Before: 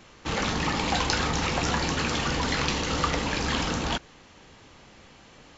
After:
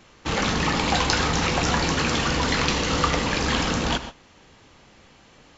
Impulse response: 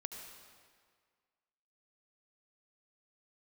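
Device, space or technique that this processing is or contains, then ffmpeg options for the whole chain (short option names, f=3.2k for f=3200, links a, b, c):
keyed gated reverb: -filter_complex "[0:a]asplit=3[a][b][c];[1:a]atrim=start_sample=2205[d];[b][d]afir=irnorm=-1:irlink=0[e];[c]apad=whole_len=246000[f];[e][f]sidechaingate=range=-33dB:threshold=-42dB:ratio=16:detection=peak,volume=1dB[g];[a][g]amix=inputs=2:normalize=0,volume=-1dB"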